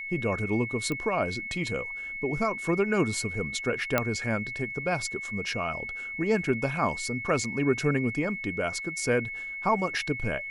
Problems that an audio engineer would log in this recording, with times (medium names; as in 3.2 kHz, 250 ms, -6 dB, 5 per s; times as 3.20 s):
whine 2.2 kHz -34 dBFS
0.92 s: pop -19 dBFS
3.98 s: pop -9 dBFS
7.44 s: dropout 2.9 ms